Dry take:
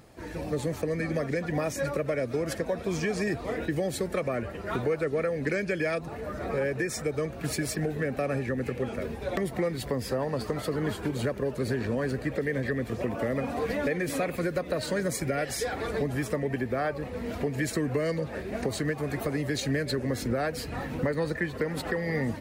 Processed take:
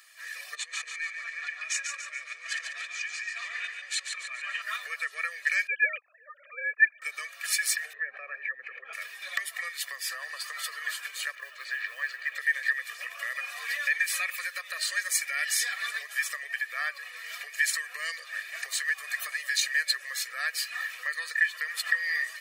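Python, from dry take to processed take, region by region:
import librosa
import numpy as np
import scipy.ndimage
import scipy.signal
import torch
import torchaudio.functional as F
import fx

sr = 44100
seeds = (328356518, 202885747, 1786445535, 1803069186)

y = fx.chain(x, sr, fx.over_compress(threshold_db=-36.0, ratio=-1.0),
    fx.cabinet(low_hz=260.0, low_slope=24, high_hz=7300.0, hz=(580.0, 2500.0, 5200.0), db=(-5, 5, -6)),
    fx.echo_feedback(ms=142, feedback_pct=46, wet_db=-6.0), at=(0.55, 4.62))
y = fx.chain(y, sr, fx.sine_speech(),
    fx.peak_eq(hz=560.0, db=8.5, octaves=1.2),
    fx.upward_expand(threshold_db=-42.0, expansion=1.5), at=(5.67, 7.02))
y = fx.chain(y, sr, fx.envelope_sharpen(power=1.5),
    fx.lowpass(hz=1900.0, slope=12),
    fx.env_flatten(amount_pct=100), at=(7.93, 8.93))
y = fx.chain(y, sr, fx.bandpass_edges(low_hz=240.0, high_hz=3600.0),
    fx.quant_companded(bits=8), at=(11.35, 12.35))
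y = scipy.signal.sosfilt(scipy.signal.cheby1(3, 1.0, 1700.0, 'highpass', fs=sr, output='sos'), y)
y = y + 0.91 * np.pad(y, (int(1.7 * sr / 1000.0), 0))[:len(y)]
y = F.gain(torch.from_numpy(y), 5.5).numpy()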